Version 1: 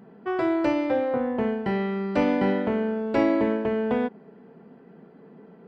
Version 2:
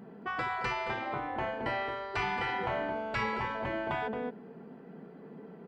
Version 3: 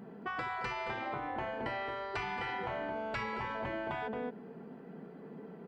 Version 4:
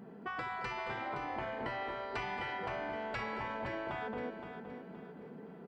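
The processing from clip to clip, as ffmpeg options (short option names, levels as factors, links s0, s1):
-filter_complex "[0:a]asplit=2[s0][s1];[s1]adelay=221.6,volume=0.355,highshelf=f=4000:g=-4.99[s2];[s0][s2]amix=inputs=2:normalize=0,afftfilt=real='re*lt(hypot(re,im),0.2)':imag='im*lt(hypot(re,im),0.2)':win_size=1024:overlap=0.75"
-af "acompressor=threshold=0.02:ratio=6"
-af "aecho=1:1:519|1038|1557|2076:0.355|0.128|0.046|0.0166,volume=0.794"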